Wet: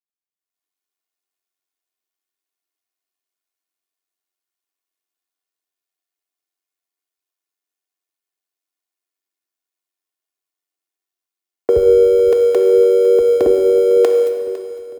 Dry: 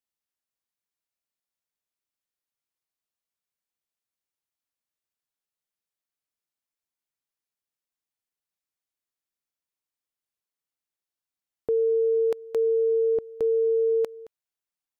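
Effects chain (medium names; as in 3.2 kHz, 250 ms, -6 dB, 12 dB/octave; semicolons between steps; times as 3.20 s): jump at every zero crossing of -42.5 dBFS; high-pass 250 Hz 24 dB/octave, from 11.76 s 50 Hz, from 13.46 s 250 Hz; AM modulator 94 Hz, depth 55%; level rider gain up to 16 dB; gate -27 dBFS, range -53 dB; feedback delay 505 ms, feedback 59%, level -17 dB; plate-style reverb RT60 2.1 s, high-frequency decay 0.85×, pre-delay 0 ms, DRR 5 dB; frequency shift +23 Hz; comb 2.8 ms, depth 64%; trim +1 dB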